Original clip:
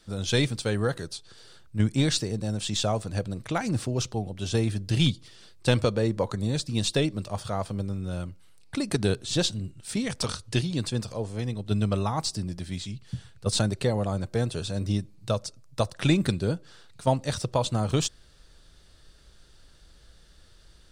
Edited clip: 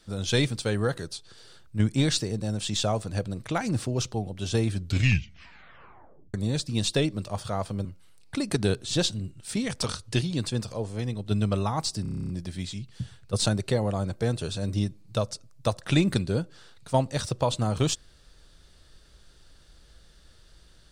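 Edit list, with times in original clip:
0:04.69: tape stop 1.65 s
0:07.85–0:08.25: remove
0:12.42: stutter 0.03 s, 10 plays

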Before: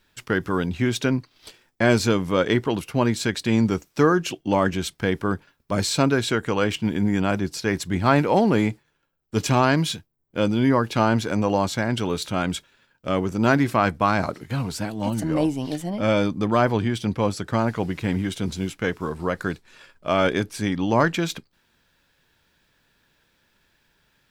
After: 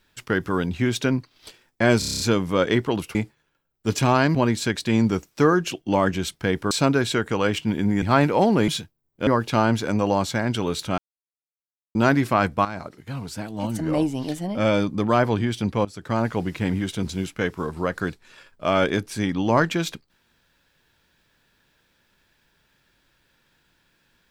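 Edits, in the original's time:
0:01.99: stutter 0.03 s, 8 plays
0:05.30–0:05.88: remove
0:07.19–0:07.97: remove
0:08.63–0:09.83: move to 0:02.94
0:10.42–0:10.70: remove
0:12.41–0:13.38: silence
0:14.08–0:15.49: fade in, from −12.5 dB
0:17.28–0:17.65: fade in, from −17 dB

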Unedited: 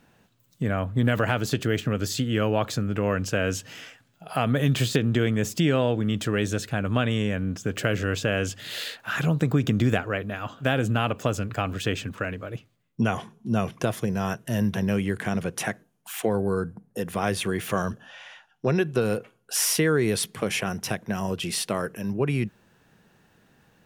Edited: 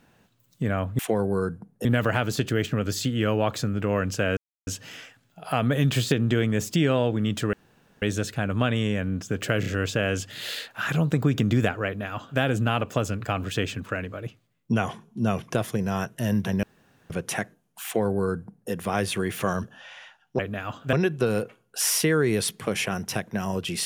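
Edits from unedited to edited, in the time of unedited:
0:03.51: splice in silence 0.30 s
0:06.37: splice in room tone 0.49 s
0:07.95: stutter 0.03 s, 3 plays
0:10.15–0:10.69: duplicate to 0:18.68
0:14.92–0:15.39: fill with room tone
0:16.14–0:17.00: duplicate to 0:00.99

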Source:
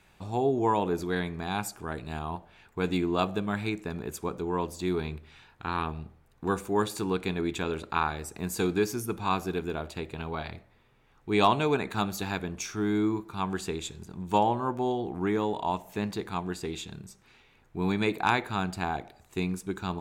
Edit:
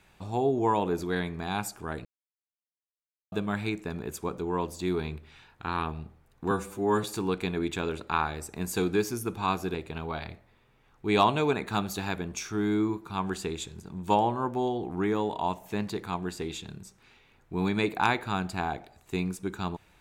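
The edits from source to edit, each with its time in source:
0:02.05–0:03.32: silence
0:06.51–0:06.86: time-stretch 1.5×
0:09.57–0:09.98: remove

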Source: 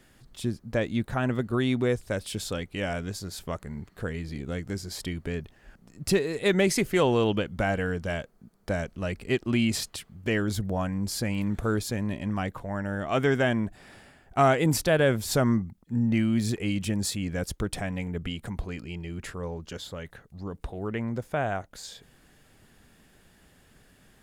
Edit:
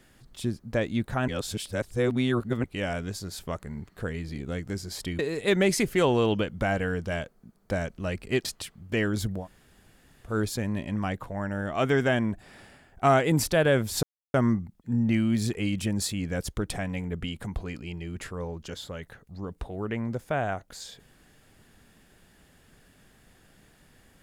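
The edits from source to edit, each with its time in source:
0:01.28–0:02.64: reverse
0:05.19–0:06.17: remove
0:09.43–0:09.79: remove
0:10.74–0:11.64: fill with room tone, crossfade 0.16 s
0:15.37: splice in silence 0.31 s

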